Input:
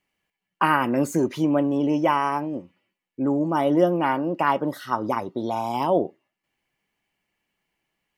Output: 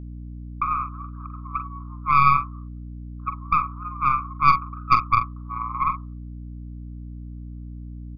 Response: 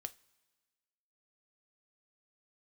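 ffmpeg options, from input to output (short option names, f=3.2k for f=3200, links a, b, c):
-filter_complex "[0:a]agate=range=-14dB:threshold=-34dB:ratio=16:detection=peak,asettb=1/sr,asplit=3[a][b][c];[a]atrim=end=3.824[d];[b]atrim=start=3.82:end=4.65,asetpts=PTS-STARTPTS,afade=t=in:d=0.004:c=qsin,afade=t=out:st=0.826:d=0.004:c=qsin,acontrast=34[e];[c]atrim=start=4.646[f];[d][e]acrossfade=d=0.004:c1=hsin:c2=qsin[g];[g][f]acrossfade=d=0.004:c1=qsin:c2=hsin,alimiter=limit=-14dB:level=0:latency=1:release=465,dynaudnorm=f=700:g=3:m=16dB,asuperpass=centerf=1200:order=8:qfactor=4.8,aeval=exprs='0.355*(cos(1*acos(clip(val(0)/0.355,-1,1)))-cos(1*PI/2))+0.0631*(cos(4*acos(clip(val(0)/0.355,-1,1)))-cos(4*PI/2))+0.00794*(cos(5*acos(clip(val(0)/0.355,-1,1)))-cos(5*PI/2))':c=same,asplit=2[h][i];[i]adelay=44,volume=-9dB[j];[h][j]amix=inputs=2:normalize=0,aeval=exprs='val(0)+0.0126*(sin(2*PI*60*n/s)+sin(2*PI*2*60*n/s)/2+sin(2*PI*3*60*n/s)/3+sin(2*PI*4*60*n/s)/4+sin(2*PI*5*60*n/s)/5)':c=same,volume=3.5dB"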